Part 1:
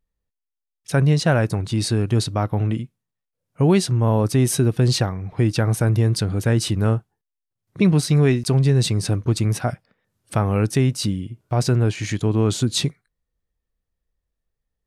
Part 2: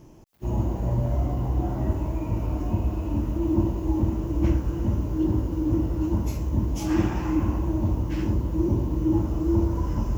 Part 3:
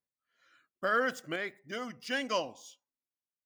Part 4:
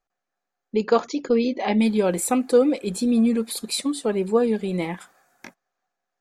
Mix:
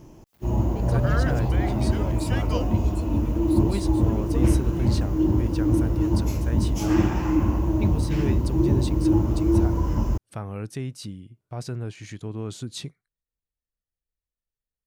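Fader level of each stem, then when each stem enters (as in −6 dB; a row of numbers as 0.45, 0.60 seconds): −13.5, +2.5, −3.0, −16.5 decibels; 0.00, 0.00, 0.20, 0.00 seconds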